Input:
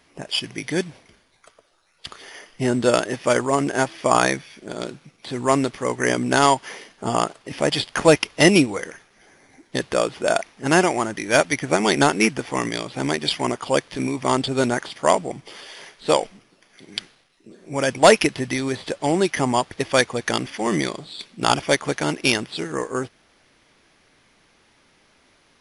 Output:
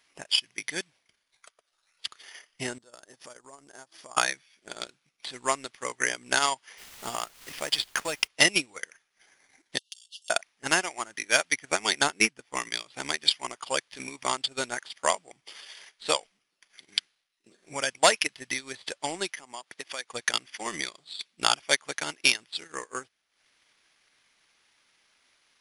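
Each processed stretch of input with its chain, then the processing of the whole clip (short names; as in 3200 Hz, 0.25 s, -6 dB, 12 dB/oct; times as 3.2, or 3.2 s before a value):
2.78–4.17 bell 2400 Hz -11 dB 1.1 oct + compressor 4:1, threshold -35 dBFS
6.77–8.26 compressor 2.5:1, threshold -18 dBFS + added noise pink -38 dBFS
9.78–10.3 compressor 12:1, threshold -29 dBFS + brick-wall FIR high-pass 2700 Hz + comb 4.7 ms, depth 76%
12.04–12.56 low shelf 480 Hz +6.5 dB + upward expander, over -34 dBFS
19.3–20.09 HPF 180 Hz + compressor 2.5:1, threshold -30 dBFS
whole clip: tilt shelf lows -8.5 dB, about 820 Hz; transient shaper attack +7 dB, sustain -11 dB; gain -13 dB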